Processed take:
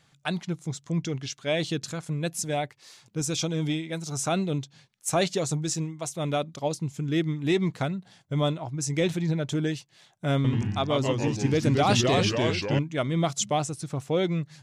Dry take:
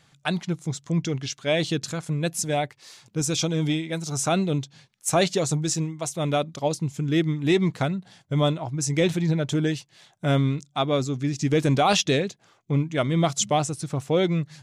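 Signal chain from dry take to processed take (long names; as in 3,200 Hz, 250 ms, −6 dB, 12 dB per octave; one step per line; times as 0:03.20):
0:10.36–0:12.79: delay with pitch and tempo change per echo 84 ms, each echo −2 semitones, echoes 3
level −3.5 dB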